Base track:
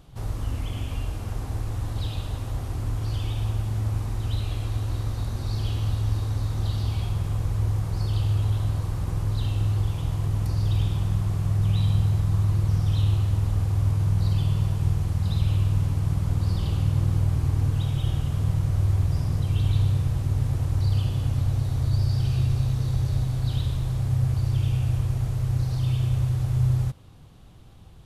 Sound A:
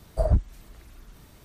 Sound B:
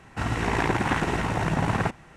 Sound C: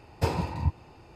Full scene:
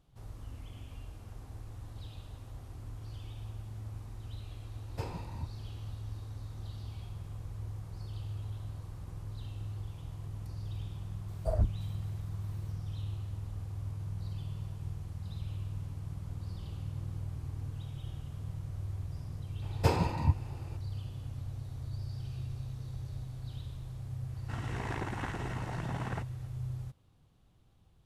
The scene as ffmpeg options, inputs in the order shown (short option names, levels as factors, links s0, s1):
-filter_complex "[3:a]asplit=2[s0][s1];[0:a]volume=0.15[s2];[2:a]bandreject=f=2400:w=17[s3];[s0]atrim=end=1.15,asetpts=PTS-STARTPTS,volume=0.224,afade=t=in:d=0.004:c=hsin,afade=t=out:st=1.146:d=0.004:c=hsin,adelay=4760[s4];[1:a]atrim=end=1.44,asetpts=PTS-STARTPTS,volume=0.398,afade=t=in:d=0.004:c=hsin,afade=t=out:st=1.436:d=0.004:c=hsin,adelay=11280[s5];[s1]atrim=end=1.15,asetpts=PTS-STARTPTS,volume=0.944,afade=t=in:d=0.004:c=hsin,afade=t=out:st=1.146:d=0.004:c=hsin,adelay=19620[s6];[s3]atrim=end=2.16,asetpts=PTS-STARTPTS,volume=0.2,afade=t=in:d=0.004:c=hsin,afade=t=out:st=2.156:d=0.004:c=hsin,adelay=24320[s7];[s2][s4][s5][s6][s7]amix=inputs=5:normalize=0"